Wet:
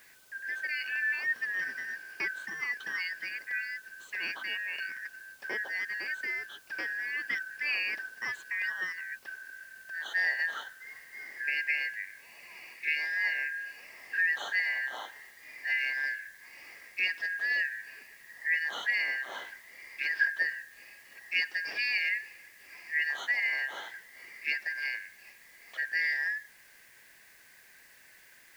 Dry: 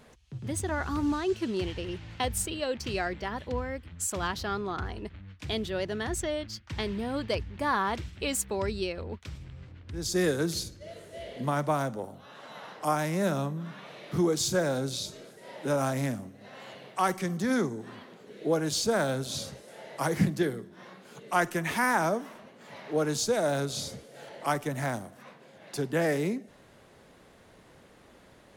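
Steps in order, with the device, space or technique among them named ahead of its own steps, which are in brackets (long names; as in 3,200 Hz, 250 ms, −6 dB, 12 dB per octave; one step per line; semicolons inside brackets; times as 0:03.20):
low-pass filter 5,400 Hz 12 dB per octave
split-band scrambled radio (band-splitting scrambler in four parts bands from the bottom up 3142; band-pass filter 320–3,200 Hz; white noise bed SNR 26 dB)
level −2.5 dB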